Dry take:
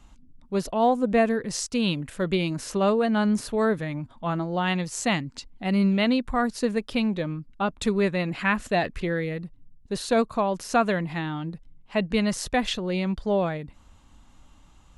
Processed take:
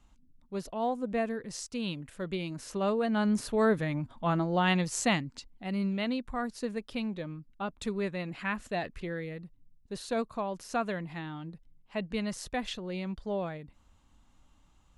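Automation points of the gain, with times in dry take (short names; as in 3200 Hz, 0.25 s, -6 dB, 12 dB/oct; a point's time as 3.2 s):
2.46 s -10 dB
3.84 s -1 dB
4.96 s -1 dB
5.65 s -9.5 dB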